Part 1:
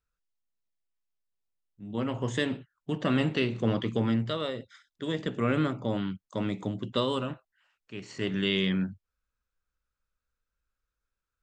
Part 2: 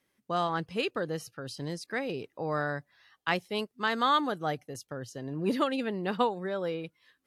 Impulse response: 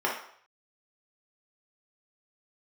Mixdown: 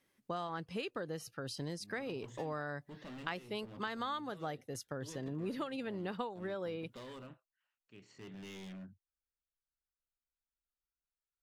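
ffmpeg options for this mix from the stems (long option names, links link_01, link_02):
-filter_complex "[0:a]asoftclip=type=hard:threshold=-28.5dB,volume=-17dB[link_01];[1:a]volume=-1dB[link_02];[link_01][link_02]amix=inputs=2:normalize=0,acompressor=threshold=-37dB:ratio=5"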